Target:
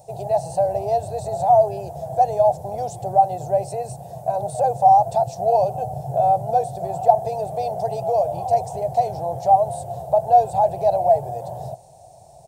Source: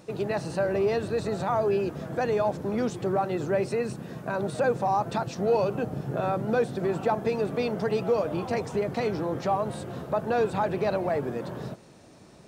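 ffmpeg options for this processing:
-af "firequalizer=gain_entry='entry(130,0);entry(240,-26);entry(720,13);entry(1200,-23);entry(4400,-8);entry(8200,4)':delay=0.05:min_phase=1,volume=1.78"

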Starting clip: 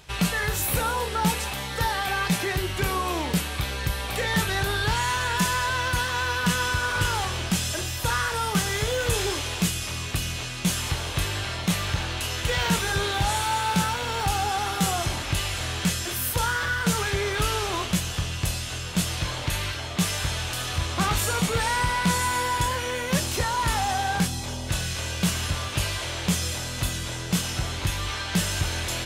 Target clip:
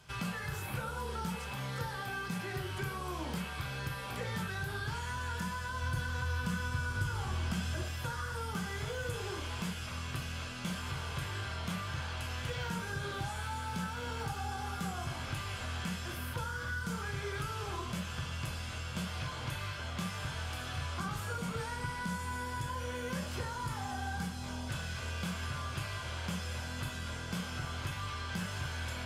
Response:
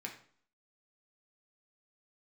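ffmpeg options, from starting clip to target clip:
-filter_complex "[1:a]atrim=start_sample=2205,atrim=end_sample=3528,asetrate=28224,aresample=44100[s0];[0:a][s0]afir=irnorm=-1:irlink=0,acrossover=split=410|3900[s1][s2][s3];[s1]acompressor=threshold=0.0316:ratio=4[s4];[s2]acompressor=threshold=0.0224:ratio=4[s5];[s3]acompressor=threshold=0.00631:ratio=4[s6];[s4][s5][s6]amix=inputs=3:normalize=0,asettb=1/sr,asplit=3[s7][s8][s9];[s7]atrim=end=5.824[s10];[s8]atrim=start=5.82:end=7.83,asetpts=PTS-STARTPTS,afade=t=in:d=0.004:c=qsin,afade=t=out:st=2.006:d=0.004:c=qsin,lowshelf=f=140:g=7.5[s11];[s9]atrim=start=7.826[s12];[s10][s11]acrossfade=d=0.004:c1=hsin:c2=qsin[s13];[s13][s12]acrossfade=d=0.004:c1=qsin:c2=hsin,volume=0.422"

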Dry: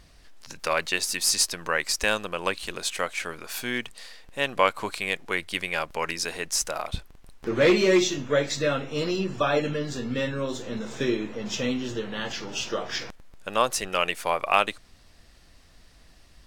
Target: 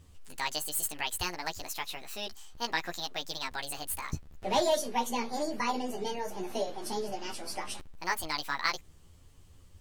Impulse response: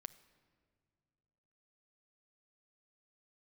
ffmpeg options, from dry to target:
-af "flanger=delay=18.5:depth=4.2:speed=0.38,lowshelf=f=190:g=7.5,asetrate=74088,aresample=44100,volume=0.531"

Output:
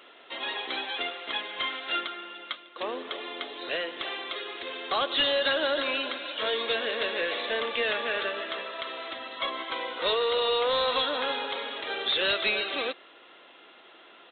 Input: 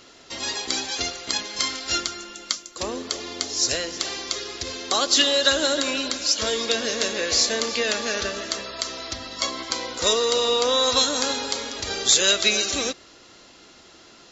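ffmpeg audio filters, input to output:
-af "highpass=440,aresample=8000,asoftclip=type=tanh:threshold=0.106,aresample=44100"

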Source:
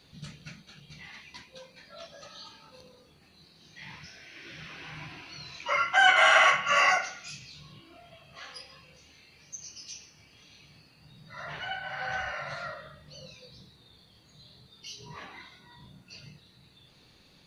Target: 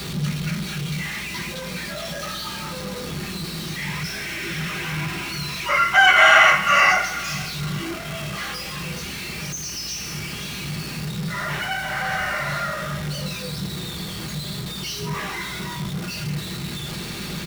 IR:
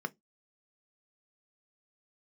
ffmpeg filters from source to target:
-filter_complex "[0:a]aeval=exprs='val(0)+0.5*0.0237*sgn(val(0))':c=same,asplit=2[s0][s1];[s1]lowpass=5100[s2];[1:a]atrim=start_sample=2205[s3];[s2][s3]afir=irnorm=-1:irlink=0,volume=1.33[s4];[s0][s4]amix=inputs=2:normalize=0,aeval=exprs='val(0)+0.00398*(sin(2*PI*60*n/s)+sin(2*PI*2*60*n/s)/2+sin(2*PI*3*60*n/s)/3+sin(2*PI*4*60*n/s)/4+sin(2*PI*5*60*n/s)/5)':c=same,aecho=1:1:471|942|1413|1884:0.0944|0.0519|0.0286|0.0157,volume=1.41"

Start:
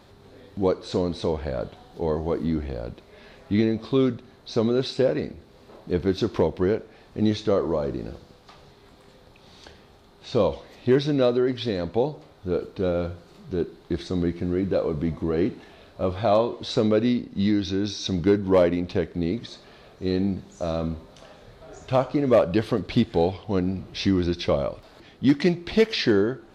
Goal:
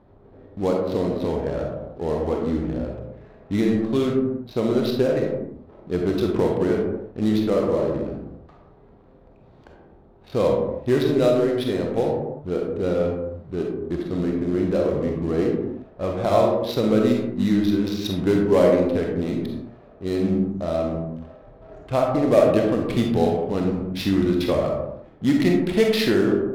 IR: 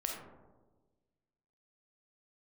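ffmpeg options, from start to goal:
-filter_complex "[0:a]acrusher=bits=5:mode=log:mix=0:aa=0.000001,adynamicsmooth=sensitivity=7.5:basefreq=750[s0];[1:a]atrim=start_sample=2205,afade=t=out:st=0.41:d=0.01,atrim=end_sample=18522[s1];[s0][s1]afir=irnorm=-1:irlink=0"

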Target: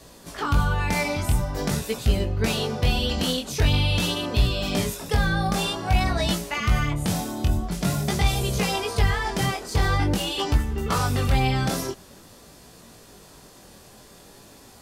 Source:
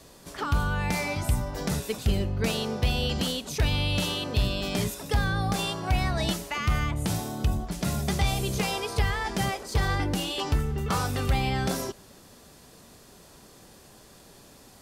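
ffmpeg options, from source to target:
-af "flanger=delay=17:depth=6.9:speed=0.47,volume=2.11"

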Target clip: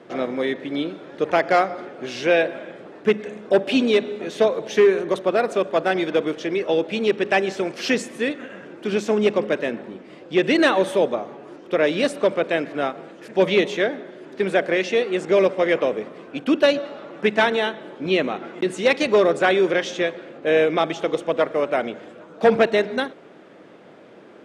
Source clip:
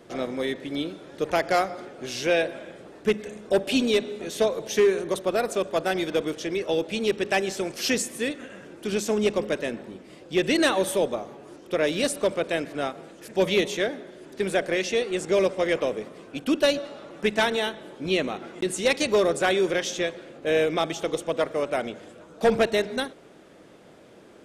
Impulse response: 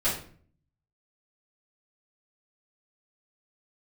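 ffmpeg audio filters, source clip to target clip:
-af "highpass=150,lowpass=2100,aemphasis=mode=production:type=75fm,volume=1.88"

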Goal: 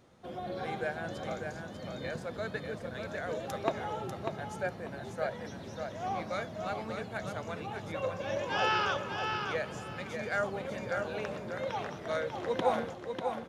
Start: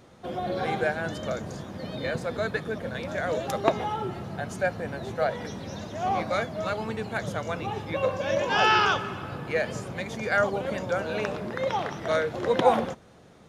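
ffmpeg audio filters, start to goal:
-af "aecho=1:1:594|1188|1782:0.531|0.122|0.0281,volume=0.376"

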